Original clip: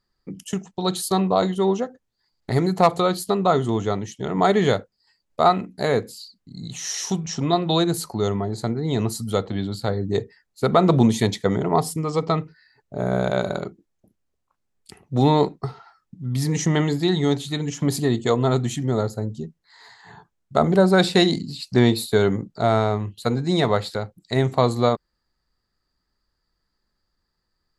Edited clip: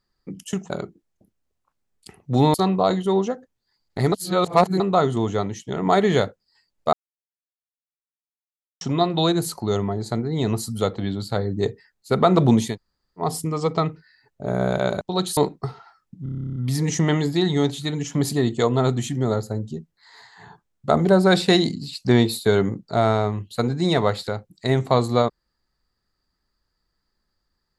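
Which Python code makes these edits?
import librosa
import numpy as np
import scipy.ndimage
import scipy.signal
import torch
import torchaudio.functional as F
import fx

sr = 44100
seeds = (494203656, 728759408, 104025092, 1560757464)

y = fx.edit(x, sr, fx.swap(start_s=0.7, length_s=0.36, other_s=13.53, other_length_s=1.84),
    fx.reverse_span(start_s=2.64, length_s=0.68),
    fx.silence(start_s=5.45, length_s=1.88),
    fx.room_tone_fill(start_s=11.22, length_s=0.54, crossfade_s=0.16),
    fx.stutter(start_s=16.23, slice_s=0.03, count=12), tone=tone)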